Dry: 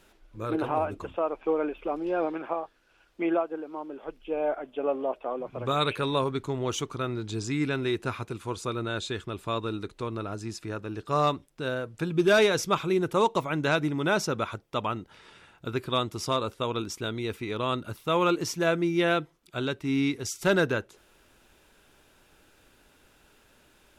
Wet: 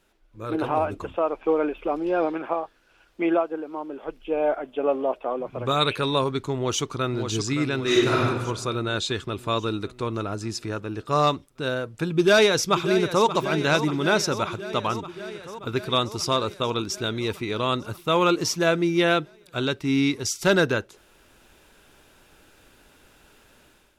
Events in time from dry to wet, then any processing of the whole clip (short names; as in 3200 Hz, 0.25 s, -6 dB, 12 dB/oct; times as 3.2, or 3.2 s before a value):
6.56–7.26 echo throw 0.57 s, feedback 60%, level -7 dB
7.82–8.25 reverb throw, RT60 1.1 s, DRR -7.5 dB
12.1–13.26 echo throw 0.58 s, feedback 75%, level -11.5 dB
whole clip: dynamic EQ 4900 Hz, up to +5 dB, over -49 dBFS, Q 1.3; AGC gain up to 11.5 dB; gain -6.5 dB